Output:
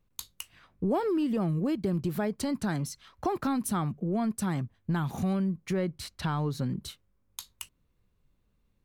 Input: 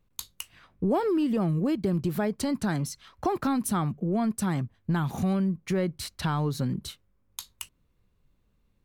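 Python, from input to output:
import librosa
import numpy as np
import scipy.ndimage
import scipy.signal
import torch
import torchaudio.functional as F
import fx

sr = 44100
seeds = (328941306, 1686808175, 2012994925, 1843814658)

y = fx.high_shelf(x, sr, hz=6800.0, db=-5.0, at=(5.73, 6.79))
y = F.gain(torch.from_numpy(y), -2.5).numpy()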